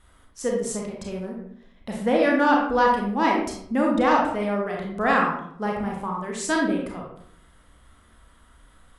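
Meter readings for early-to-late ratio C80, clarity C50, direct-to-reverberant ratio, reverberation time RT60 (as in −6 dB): 6.5 dB, 2.5 dB, −1.5 dB, 0.70 s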